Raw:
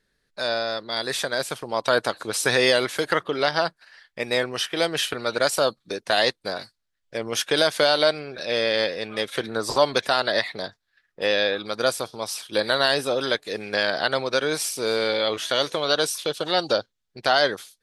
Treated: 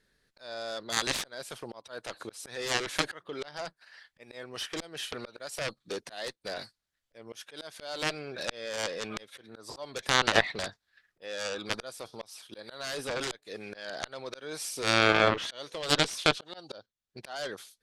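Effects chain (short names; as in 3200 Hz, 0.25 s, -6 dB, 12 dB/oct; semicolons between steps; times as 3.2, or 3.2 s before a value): auto swell 0.791 s; added harmonics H 5 -23 dB, 7 -11 dB, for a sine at -8.5 dBFS; treble ducked by the level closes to 1700 Hz, closed at -19.5 dBFS; gain +4.5 dB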